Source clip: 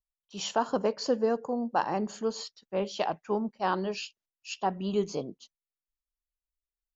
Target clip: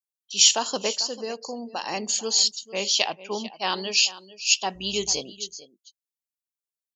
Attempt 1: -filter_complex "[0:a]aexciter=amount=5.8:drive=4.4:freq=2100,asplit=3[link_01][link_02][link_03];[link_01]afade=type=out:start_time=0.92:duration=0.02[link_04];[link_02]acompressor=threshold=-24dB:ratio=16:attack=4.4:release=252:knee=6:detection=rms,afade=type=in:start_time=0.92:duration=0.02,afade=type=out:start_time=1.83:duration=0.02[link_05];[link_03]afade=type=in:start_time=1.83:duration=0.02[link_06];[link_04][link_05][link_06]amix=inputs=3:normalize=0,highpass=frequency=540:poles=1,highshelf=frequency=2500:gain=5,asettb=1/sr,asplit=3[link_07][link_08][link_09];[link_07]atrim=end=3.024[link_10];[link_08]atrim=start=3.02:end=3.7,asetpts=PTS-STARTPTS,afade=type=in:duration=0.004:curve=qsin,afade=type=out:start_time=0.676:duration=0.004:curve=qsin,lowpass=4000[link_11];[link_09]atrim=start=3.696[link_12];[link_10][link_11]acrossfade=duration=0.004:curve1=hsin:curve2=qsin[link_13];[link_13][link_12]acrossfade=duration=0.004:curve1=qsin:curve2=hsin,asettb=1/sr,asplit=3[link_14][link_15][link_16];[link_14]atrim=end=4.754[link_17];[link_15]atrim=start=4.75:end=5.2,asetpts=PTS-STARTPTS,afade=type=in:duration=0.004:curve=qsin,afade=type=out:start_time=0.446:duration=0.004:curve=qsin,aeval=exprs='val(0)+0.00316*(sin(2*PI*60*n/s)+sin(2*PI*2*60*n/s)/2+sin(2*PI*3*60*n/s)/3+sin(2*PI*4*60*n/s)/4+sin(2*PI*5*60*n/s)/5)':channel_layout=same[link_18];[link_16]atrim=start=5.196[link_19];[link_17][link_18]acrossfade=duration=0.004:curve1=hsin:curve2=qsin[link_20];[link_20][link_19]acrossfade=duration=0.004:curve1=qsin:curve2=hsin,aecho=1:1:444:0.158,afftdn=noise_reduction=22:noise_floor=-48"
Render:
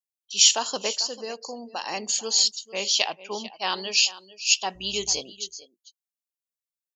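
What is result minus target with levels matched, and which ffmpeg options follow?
250 Hz band −5.0 dB
-filter_complex "[0:a]aexciter=amount=5.8:drive=4.4:freq=2100,asplit=3[link_01][link_02][link_03];[link_01]afade=type=out:start_time=0.92:duration=0.02[link_04];[link_02]acompressor=threshold=-24dB:ratio=16:attack=4.4:release=252:knee=6:detection=rms,afade=type=in:start_time=0.92:duration=0.02,afade=type=out:start_time=1.83:duration=0.02[link_05];[link_03]afade=type=in:start_time=1.83:duration=0.02[link_06];[link_04][link_05][link_06]amix=inputs=3:normalize=0,highpass=frequency=250:poles=1,highshelf=frequency=2500:gain=5,asettb=1/sr,asplit=3[link_07][link_08][link_09];[link_07]atrim=end=3.024[link_10];[link_08]atrim=start=3.02:end=3.7,asetpts=PTS-STARTPTS,afade=type=in:duration=0.004:curve=qsin,afade=type=out:start_time=0.676:duration=0.004:curve=qsin,lowpass=4000[link_11];[link_09]atrim=start=3.696[link_12];[link_10][link_11]acrossfade=duration=0.004:curve1=hsin:curve2=qsin[link_13];[link_13][link_12]acrossfade=duration=0.004:curve1=qsin:curve2=hsin,asettb=1/sr,asplit=3[link_14][link_15][link_16];[link_14]atrim=end=4.754[link_17];[link_15]atrim=start=4.75:end=5.2,asetpts=PTS-STARTPTS,afade=type=in:duration=0.004:curve=qsin,afade=type=out:start_time=0.446:duration=0.004:curve=qsin,aeval=exprs='val(0)+0.00316*(sin(2*PI*60*n/s)+sin(2*PI*2*60*n/s)/2+sin(2*PI*3*60*n/s)/3+sin(2*PI*4*60*n/s)/4+sin(2*PI*5*60*n/s)/5)':channel_layout=same[link_18];[link_16]atrim=start=5.196[link_19];[link_17][link_18]acrossfade=duration=0.004:curve1=hsin:curve2=qsin[link_20];[link_20][link_19]acrossfade=duration=0.004:curve1=qsin:curve2=hsin,aecho=1:1:444:0.158,afftdn=noise_reduction=22:noise_floor=-48"

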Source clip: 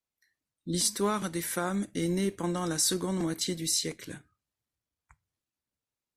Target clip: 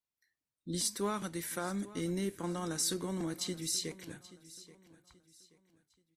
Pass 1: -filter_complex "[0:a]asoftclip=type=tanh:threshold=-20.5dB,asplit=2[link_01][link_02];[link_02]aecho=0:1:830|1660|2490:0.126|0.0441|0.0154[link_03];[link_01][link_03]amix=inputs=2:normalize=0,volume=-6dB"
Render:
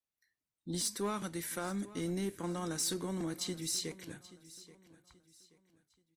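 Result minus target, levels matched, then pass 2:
soft clipping: distortion +20 dB
-filter_complex "[0:a]asoftclip=type=tanh:threshold=-9dB,asplit=2[link_01][link_02];[link_02]aecho=0:1:830|1660|2490:0.126|0.0441|0.0154[link_03];[link_01][link_03]amix=inputs=2:normalize=0,volume=-6dB"

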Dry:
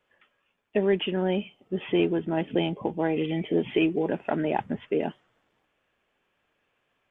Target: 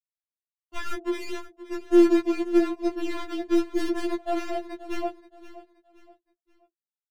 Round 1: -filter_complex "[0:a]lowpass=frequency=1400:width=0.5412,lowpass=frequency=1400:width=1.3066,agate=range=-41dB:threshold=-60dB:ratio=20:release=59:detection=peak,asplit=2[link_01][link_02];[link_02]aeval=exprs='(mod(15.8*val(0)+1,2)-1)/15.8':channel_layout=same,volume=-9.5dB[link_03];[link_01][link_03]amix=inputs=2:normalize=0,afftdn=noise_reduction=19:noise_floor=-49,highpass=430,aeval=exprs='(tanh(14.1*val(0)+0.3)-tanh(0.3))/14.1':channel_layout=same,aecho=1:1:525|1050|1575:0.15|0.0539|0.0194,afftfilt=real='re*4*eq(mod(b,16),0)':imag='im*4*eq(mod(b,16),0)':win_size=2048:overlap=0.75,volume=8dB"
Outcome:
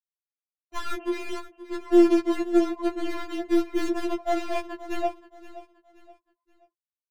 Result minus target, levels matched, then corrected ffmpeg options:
1,000 Hz band +2.5 dB
-filter_complex "[0:a]lowpass=frequency=620:width=0.5412,lowpass=frequency=620:width=1.3066,agate=range=-41dB:threshold=-60dB:ratio=20:release=59:detection=peak,asplit=2[link_01][link_02];[link_02]aeval=exprs='(mod(15.8*val(0)+1,2)-1)/15.8':channel_layout=same,volume=-9.5dB[link_03];[link_01][link_03]amix=inputs=2:normalize=0,afftdn=noise_reduction=19:noise_floor=-49,highpass=430,aeval=exprs='(tanh(14.1*val(0)+0.3)-tanh(0.3))/14.1':channel_layout=same,aecho=1:1:525|1050|1575:0.15|0.0539|0.0194,afftfilt=real='re*4*eq(mod(b,16),0)':imag='im*4*eq(mod(b,16),0)':win_size=2048:overlap=0.75,volume=8dB"

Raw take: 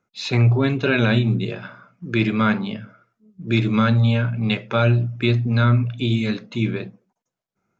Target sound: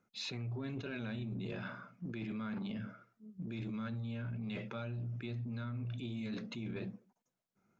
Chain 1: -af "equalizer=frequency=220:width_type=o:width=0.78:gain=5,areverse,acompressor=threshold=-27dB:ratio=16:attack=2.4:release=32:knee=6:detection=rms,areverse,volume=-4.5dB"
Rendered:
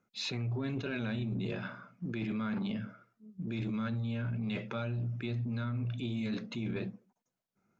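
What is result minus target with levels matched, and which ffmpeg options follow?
downward compressor: peak gain reduction −5.5 dB
-af "equalizer=frequency=220:width_type=o:width=0.78:gain=5,areverse,acompressor=threshold=-33dB:ratio=16:attack=2.4:release=32:knee=6:detection=rms,areverse,volume=-4.5dB"

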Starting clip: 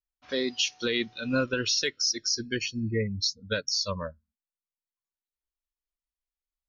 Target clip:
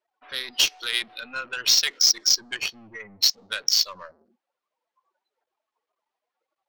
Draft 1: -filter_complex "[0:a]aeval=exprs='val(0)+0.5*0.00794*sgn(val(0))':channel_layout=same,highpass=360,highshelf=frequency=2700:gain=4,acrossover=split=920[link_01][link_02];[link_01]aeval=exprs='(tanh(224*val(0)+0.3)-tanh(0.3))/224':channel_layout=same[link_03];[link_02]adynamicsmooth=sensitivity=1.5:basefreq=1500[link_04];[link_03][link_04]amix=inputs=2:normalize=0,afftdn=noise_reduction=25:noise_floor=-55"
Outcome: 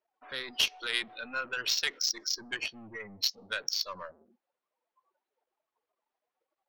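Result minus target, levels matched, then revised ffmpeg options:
2,000 Hz band +6.0 dB
-filter_complex "[0:a]aeval=exprs='val(0)+0.5*0.00794*sgn(val(0))':channel_layout=same,highpass=360,highshelf=frequency=2700:gain=12,acrossover=split=920[link_01][link_02];[link_01]aeval=exprs='(tanh(224*val(0)+0.3)-tanh(0.3))/224':channel_layout=same[link_03];[link_02]adynamicsmooth=sensitivity=1.5:basefreq=1500[link_04];[link_03][link_04]amix=inputs=2:normalize=0,afftdn=noise_reduction=25:noise_floor=-55"

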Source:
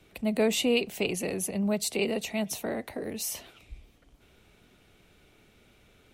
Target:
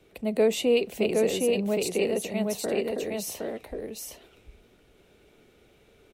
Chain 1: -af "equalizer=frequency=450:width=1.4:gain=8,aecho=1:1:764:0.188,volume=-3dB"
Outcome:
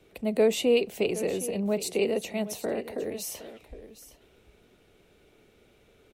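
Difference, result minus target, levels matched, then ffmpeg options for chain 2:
echo-to-direct −11.5 dB
-af "equalizer=frequency=450:width=1.4:gain=8,aecho=1:1:764:0.708,volume=-3dB"

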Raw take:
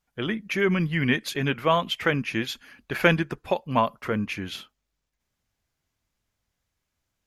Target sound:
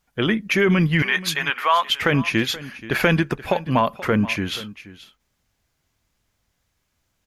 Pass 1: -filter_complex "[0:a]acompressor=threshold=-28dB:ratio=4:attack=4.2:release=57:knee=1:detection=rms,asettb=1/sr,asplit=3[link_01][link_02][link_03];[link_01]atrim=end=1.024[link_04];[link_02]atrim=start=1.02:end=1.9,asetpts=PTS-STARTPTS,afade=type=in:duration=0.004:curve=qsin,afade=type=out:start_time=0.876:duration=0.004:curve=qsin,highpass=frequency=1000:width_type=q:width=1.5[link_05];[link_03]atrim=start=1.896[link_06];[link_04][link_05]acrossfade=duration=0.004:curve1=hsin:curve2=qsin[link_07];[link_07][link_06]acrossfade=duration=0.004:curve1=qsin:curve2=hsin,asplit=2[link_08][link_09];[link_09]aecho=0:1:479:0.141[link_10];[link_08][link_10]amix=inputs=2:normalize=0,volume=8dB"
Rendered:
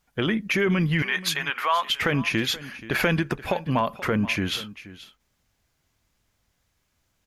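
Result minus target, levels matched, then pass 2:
downward compressor: peak gain reduction +5 dB
-filter_complex "[0:a]acompressor=threshold=-21.5dB:ratio=4:attack=4.2:release=57:knee=1:detection=rms,asettb=1/sr,asplit=3[link_01][link_02][link_03];[link_01]atrim=end=1.024[link_04];[link_02]atrim=start=1.02:end=1.9,asetpts=PTS-STARTPTS,afade=type=in:duration=0.004:curve=qsin,afade=type=out:start_time=0.876:duration=0.004:curve=qsin,highpass=frequency=1000:width_type=q:width=1.5[link_05];[link_03]atrim=start=1.896[link_06];[link_04][link_05]acrossfade=duration=0.004:curve1=hsin:curve2=qsin[link_07];[link_07][link_06]acrossfade=duration=0.004:curve1=qsin:curve2=hsin,asplit=2[link_08][link_09];[link_09]aecho=0:1:479:0.141[link_10];[link_08][link_10]amix=inputs=2:normalize=0,volume=8dB"

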